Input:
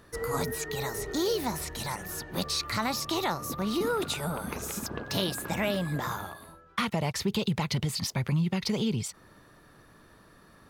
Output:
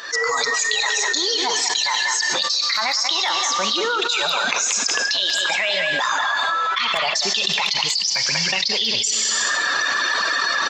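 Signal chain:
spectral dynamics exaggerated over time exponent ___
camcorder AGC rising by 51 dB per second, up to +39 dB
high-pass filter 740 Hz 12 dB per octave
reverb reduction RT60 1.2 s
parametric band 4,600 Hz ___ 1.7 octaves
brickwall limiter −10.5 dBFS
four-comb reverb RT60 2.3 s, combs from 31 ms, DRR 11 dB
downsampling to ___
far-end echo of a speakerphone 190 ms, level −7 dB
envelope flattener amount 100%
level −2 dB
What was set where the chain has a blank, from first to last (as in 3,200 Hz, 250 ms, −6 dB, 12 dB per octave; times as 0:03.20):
1.5, +13 dB, 16,000 Hz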